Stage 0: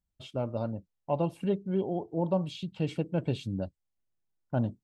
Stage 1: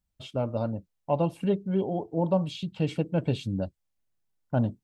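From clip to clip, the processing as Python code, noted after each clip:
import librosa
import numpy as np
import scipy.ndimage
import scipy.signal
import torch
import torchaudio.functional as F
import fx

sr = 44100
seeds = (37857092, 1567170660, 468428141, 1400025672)

y = fx.notch(x, sr, hz=360.0, q=12.0)
y = y * librosa.db_to_amplitude(3.5)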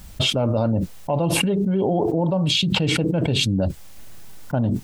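y = fx.env_flatten(x, sr, amount_pct=100)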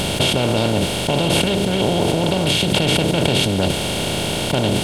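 y = fx.bin_compress(x, sr, power=0.2)
y = y * librosa.db_to_amplitude(-4.0)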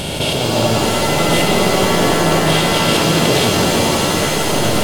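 y = fx.echo_stepped(x, sr, ms=126, hz=510.0, octaves=0.7, feedback_pct=70, wet_db=-1.0)
y = fx.rev_shimmer(y, sr, seeds[0], rt60_s=3.6, semitones=7, shimmer_db=-2, drr_db=-0.5)
y = y * librosa.db_to_amplitude(-2.5)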